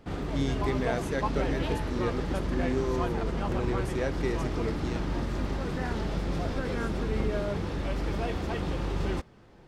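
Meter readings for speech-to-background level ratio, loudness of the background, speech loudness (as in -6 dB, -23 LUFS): -2.0 dB, -32.0 LUFS, -34.0 LUFS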